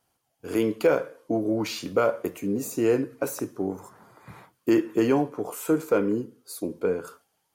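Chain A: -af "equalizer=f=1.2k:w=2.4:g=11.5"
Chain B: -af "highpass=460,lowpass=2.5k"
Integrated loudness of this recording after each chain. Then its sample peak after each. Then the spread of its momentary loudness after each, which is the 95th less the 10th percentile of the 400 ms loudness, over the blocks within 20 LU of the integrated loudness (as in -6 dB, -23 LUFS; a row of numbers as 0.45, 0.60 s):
-25.5, -30.5 LUFS; -7.0, -11.0 dBFS; 17, 12 LU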